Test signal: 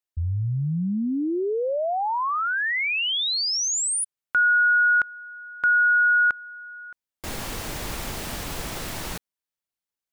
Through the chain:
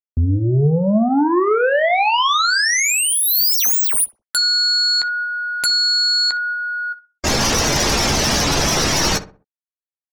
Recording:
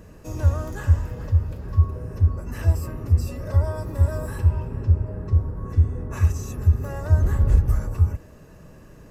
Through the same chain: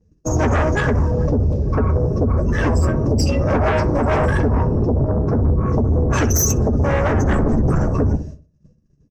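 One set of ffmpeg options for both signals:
-filter_complex "[0:a]afftdn=nr=25:nf=-37,agate=range=0.0224:threshold=0.0126:ratio=3:release=162:detection=rms,lowpass=f=5800:t=q:w=5.5,lowshelf=f=90:g=-7,acompressor=threshold=0.0355:ratio=4:attack=99:release=83:knee=1:detection=peak,highshelf=f=4300:g=5.5,aeval=exprs='0.211*sin(PI/2*5.62*val(0)/0.211)':c=same,asplit=2[s0][s1];[s1]adelay=14,volume=0.316[s2];[s0][s2]amix=inputs=2:normalize=0,asplit=2[s3][s4];[s4]adelay=63,lowpass=f=1300:p=1,volume=0.251,asplit=2[s5][s6];[s6]adelay=63,lowpass=f=1300:p=1,volume=0.37,asplit=2[s7][s8];[s8]adelay=63,lowpass=f=1300:p=1,volume=0.37,asplit=2[s9][s10];[s10]adelay=63,lowpass=f=1300:p=1,volume=0.37[s11];[s3][s5][s7][s9][s11]amix=inputs=5:normalize=0"

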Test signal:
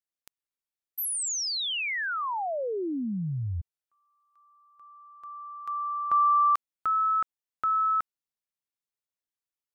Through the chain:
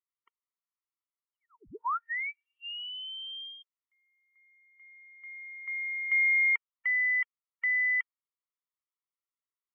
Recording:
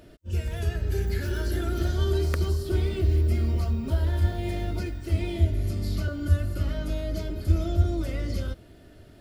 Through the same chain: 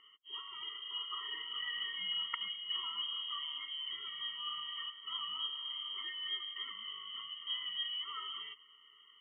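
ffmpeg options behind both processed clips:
-filter_complex "[0:a]lowpass=f=2800:t=q:w=0.5098,lowpass=f=2800:t=q:w=0.6013,lowpass=f=2800:t=q:w=0.9,lowpass=f=2800:t=q:w=2.563,afreqshift=-3300,acrossover=split=440 2100:gain=0.126 1 0.0891[s0][s1][s2];[s0][s1][s2]amix=inputs=3:normalize=0,afftfilt=real='re*eq(mod(floor(b*sr/1024/460),2),0)':imag='im*eq(mod(floor(b*sr/1024/460),2),0)':win_size=1024:overlap=0.75,volume=1.33"

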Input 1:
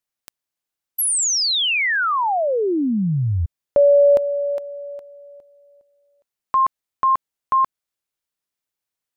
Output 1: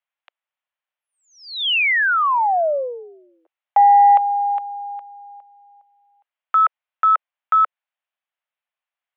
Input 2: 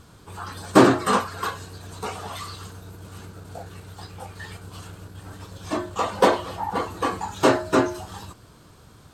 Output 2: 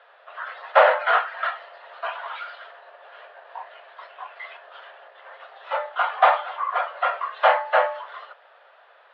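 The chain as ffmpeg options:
-af "asoftclip=type=tanh:threshold=0.531,highpass=f=330:t=q:w=0.5412,highpass=f=330:t=q:w=1.307,lowpass=f=3000:t=q:w=0.5176,lowpass=f=3000:t=q:w=0.7071,lowpass=f=3000:t=q:w=1.932,afreqshift=240,volume=1.33"

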